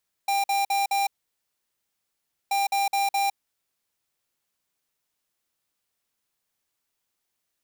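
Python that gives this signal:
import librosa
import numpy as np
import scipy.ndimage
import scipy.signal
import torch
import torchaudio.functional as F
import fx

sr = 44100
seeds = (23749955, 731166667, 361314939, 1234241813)

y = fx.beep_pattern(sr, wave='square', hz=795.0, on_s=0.16, off_s=0.05, beeps=4, pause_s=1.44, groups=2, level_db=-23.5)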